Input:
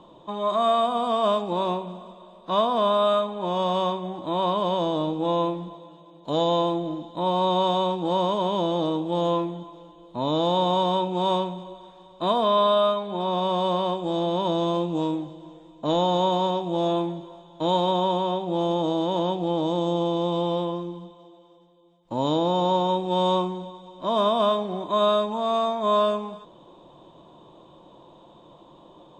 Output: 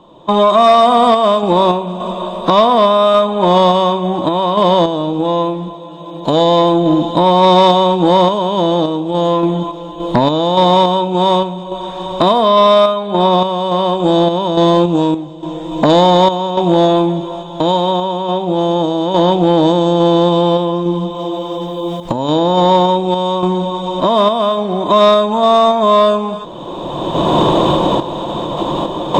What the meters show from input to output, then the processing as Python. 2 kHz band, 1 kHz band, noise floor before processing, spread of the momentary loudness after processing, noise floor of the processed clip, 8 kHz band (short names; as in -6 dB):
+14.5 dB, +12.0 dB, -51 dBFS, 12 LU, -28 dBFS, n/a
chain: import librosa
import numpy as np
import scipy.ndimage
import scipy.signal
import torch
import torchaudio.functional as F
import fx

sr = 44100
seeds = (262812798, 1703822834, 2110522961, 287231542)

y = fx.recorder_agc(x, sr, target_db=-16.0, rise_db_per_s=20.0, max_gain_db=30)
y = fx.tremolo_random(y, sr, seeds[0], hz=3.5, depth_pct=75)
y = fx.fold_sine(y, sr, drive_db=4, ceiling_db=-10.0)
y = y * 10.0 ** (7.5 / 20.0)